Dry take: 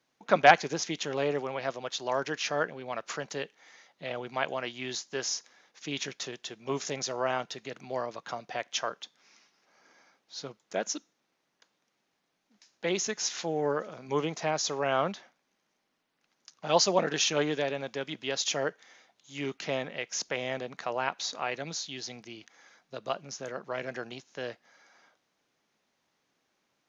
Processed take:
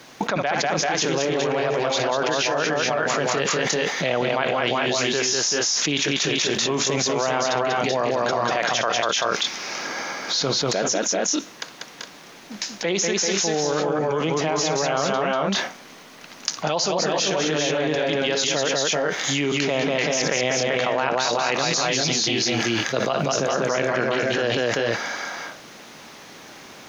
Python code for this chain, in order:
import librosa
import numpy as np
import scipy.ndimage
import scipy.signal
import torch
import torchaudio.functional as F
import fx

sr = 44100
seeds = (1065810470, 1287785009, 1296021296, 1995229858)

p1 = x + fx.echo_multitap(x, sr, ms=(61, 192, 387, 413), db=(-16.5, -4.0, -4.5, -7.5), dry=0)
p2 = fx.env_flatten(p1, sr, amount_pct=100)
y = F.gain(torch.from_numpy(p2), -9.0).numpy()